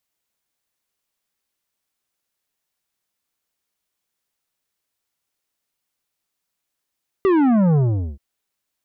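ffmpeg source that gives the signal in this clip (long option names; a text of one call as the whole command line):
ffmpeg -f lavfi -i "aevalsrc='0.2*clip((0.93-t)/0.42,0,1)*tanh(3.35*sin(2*PI*400*0.93/log(65/400)*(exp(log(65/400)*t/0.93)-1)))/tanh(3.35)':duration=0.93:sample_rate=44100" out.wav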